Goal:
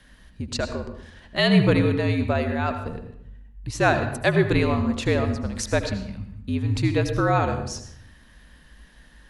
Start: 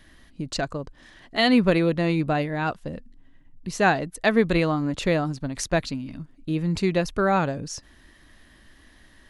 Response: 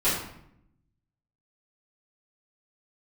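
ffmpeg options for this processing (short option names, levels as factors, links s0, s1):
-filter_complex "[0:a]asplit=2[s0][s1];[1:a]atrim=start_sample=2205,adelay=73[s2];[s1][s2]afir=irnorm=-1:irlink=0,volume=0.0891[s3];[s0][s3]amix=inputs=2:normalize=0,afreqshift=-60"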